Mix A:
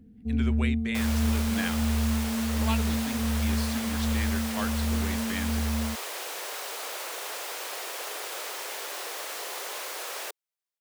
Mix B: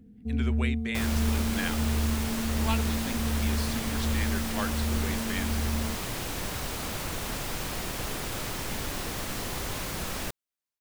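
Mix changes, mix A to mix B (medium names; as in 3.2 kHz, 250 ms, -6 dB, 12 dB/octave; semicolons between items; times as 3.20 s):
second sound: remove steep high-pass 410 Hz 36 dB/octave; reverb: on, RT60 1.1 s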